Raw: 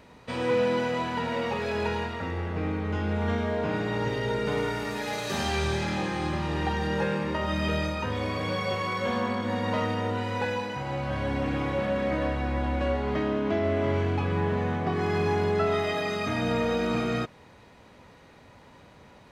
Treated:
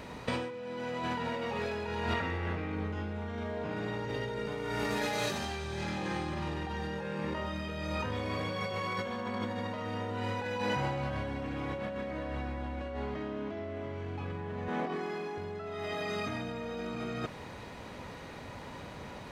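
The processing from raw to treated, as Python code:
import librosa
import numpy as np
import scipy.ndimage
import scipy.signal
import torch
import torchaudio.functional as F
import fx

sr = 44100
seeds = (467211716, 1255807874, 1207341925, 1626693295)

y = fx.peak_eq(x, sr, hz=2200.0, db=5.5, octaves=1.9, at=(2.15, 2.75))
y = fx.highpass(y, sr, hz=200.0, slope=24, at=(14.68, 15.38))
y = fx.over_compress(y, sr, threshold_db=-36.0, ratio=-1.0)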